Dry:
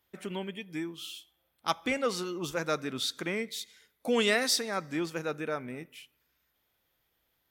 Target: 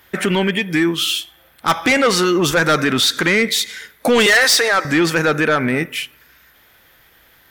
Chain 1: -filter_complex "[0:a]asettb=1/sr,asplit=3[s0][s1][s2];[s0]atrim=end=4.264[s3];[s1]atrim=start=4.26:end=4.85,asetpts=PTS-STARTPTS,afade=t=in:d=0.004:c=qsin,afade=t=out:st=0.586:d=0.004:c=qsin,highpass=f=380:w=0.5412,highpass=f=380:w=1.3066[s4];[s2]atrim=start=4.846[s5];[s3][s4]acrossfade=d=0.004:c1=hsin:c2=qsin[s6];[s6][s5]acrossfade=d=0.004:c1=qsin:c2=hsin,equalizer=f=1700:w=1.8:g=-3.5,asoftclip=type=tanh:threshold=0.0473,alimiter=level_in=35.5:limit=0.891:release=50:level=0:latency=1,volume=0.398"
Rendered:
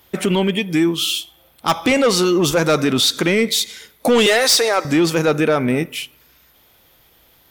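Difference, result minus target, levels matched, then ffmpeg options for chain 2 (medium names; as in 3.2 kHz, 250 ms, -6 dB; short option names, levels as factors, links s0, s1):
2 kHz band -5.5 dB
-filter_complex "[0:a]asettb=1/sr,asplit=3[s0][s1][s2];[s0]atrim=end=4.264[s3];[s1]atrim=start=4.26:end=4.85,asetpts=PTS-STARTPTS,afade=t=in:d=0.004:c=qsin,afade=t=out:st=0.586:d=0.004:c=qsin,highpass=f=380:w=0.5412,highpass=f=380:w=1.3066[s4];[s2]atrim=start=4.846[s5];[s3][s4]acrossfade=d=0.004:c1=hsin:c2=qsin[s6];[s6][s5]acrossfade=d=0.004:c1=qsin:c2=hsin,equalizer=f=1700:w=1.8:g=8,asoftclip=type=tanh:threshold=0.0473,alimiter=level_in=35.5:limit=0.891:release=50:level=0:latency=1,volume=0.398"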